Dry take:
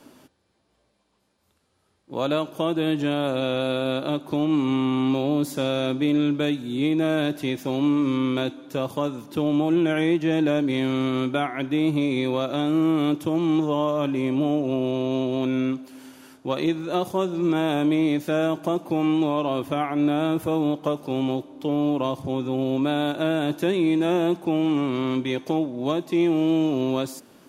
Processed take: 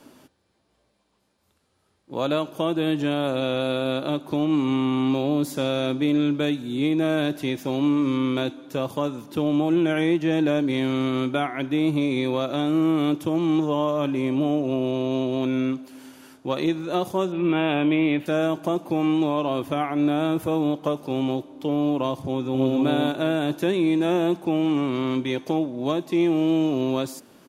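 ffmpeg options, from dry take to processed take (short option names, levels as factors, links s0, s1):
-filter_complex "[0:a]asettb=1/sr,asplit=3[s0][s1][s2];[s0]atrim=end=17.324[s3];[s1]atrim=start=17.32:end=18.26,asetpts=PTS-STARTPTS,afade=t=in:d=0.004:c=qsin,afade=t=out:st=0.936:d=0.004:c=qsin,highshelf=f=4000:t=q:w=3:g=-12.5[s4];[s2]atrim=start=18.256[s5];[s3][s4]acrossfade=d=0.004:c1=hsin:c2=qsin[s6];[s6][s5]acrossfade=d=0.004:c1=qsin:c2=hsin,asplit=2[s7][s8];[s8]afade=t=in:st=22.27:d=0.01,afade=t=out:st=22.81:d=0.01,aecho=0:1:270|540|810:0.707946|0.141589|0.0283178[s9];[s7][s9]amix=inputs=2:normalize=0"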